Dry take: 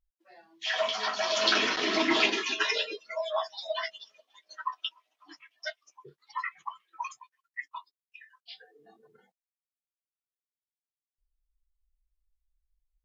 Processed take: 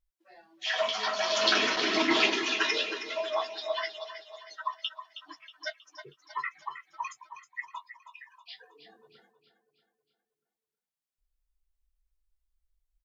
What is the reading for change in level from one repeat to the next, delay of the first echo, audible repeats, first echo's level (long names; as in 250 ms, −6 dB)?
−6.0 dB, 318 ms, 4, −11.0 dB